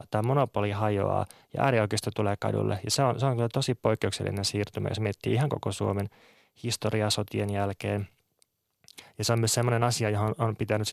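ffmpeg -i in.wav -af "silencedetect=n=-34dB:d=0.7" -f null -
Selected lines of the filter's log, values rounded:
silence_start: 8.04
silence_end: 8.88 | silence_duration: 0.85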